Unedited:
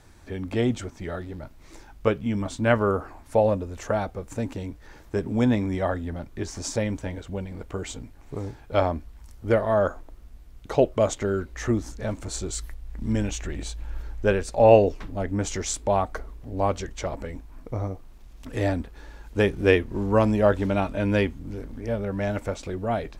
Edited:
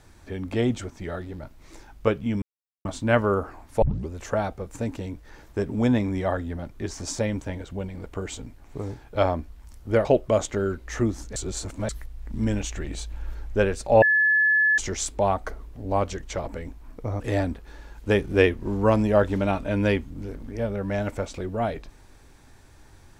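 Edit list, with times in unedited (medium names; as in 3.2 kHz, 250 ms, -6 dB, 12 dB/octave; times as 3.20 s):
2.42 s: insert silence 0.43 s
3.39 s: tape start 0.27 s
9.62–10.73 s: delete
12.04–12.57 s: reverse
14.70–15.46 s: bleep 1.72 kHz -16.5 dBFS
17.88–18.49 s: delete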